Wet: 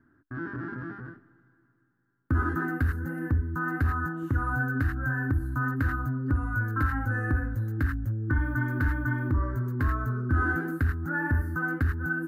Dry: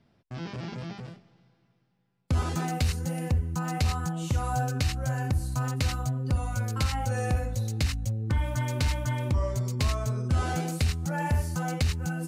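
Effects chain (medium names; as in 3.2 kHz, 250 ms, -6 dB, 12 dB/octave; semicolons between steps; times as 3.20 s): FFT filter 120 Hz 0 dB, 190 Hz -9 dB, 290 Hz +12 dB, 520 Hz -10 dB, 750 Hz -10 dB, 1.6 kHz +14 dB, 2.3 kHz -18 dB, 5.5 kHz -27 dB, 8.2 kHz -25 dB, 14 kHz -4 dB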